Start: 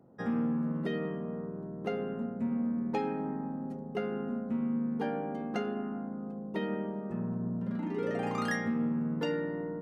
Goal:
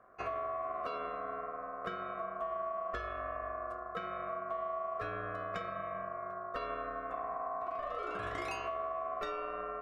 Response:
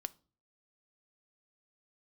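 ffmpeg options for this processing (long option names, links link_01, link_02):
-af "acompressor=threshold=-33dB:ratio=6,aeval=exprs='val(0)*sin(2*PI*890*n/s)':channel_layout=same,bandreject=frequency=79.01:width_type=h:width=4,bandreject=frequency=158.02:width_type=h:width=4,bandreject=frequency=237.03:width_type=h:width=4,bandreject=frequency=316.04:width_type=h:width=4,bandreject=frequency=395.05:width_type=h:width=4,bandreject=frequency=474.06:width_type=h:width=4,bandreject=frequency=553.07:width_type=h:width=4,volume=1dB"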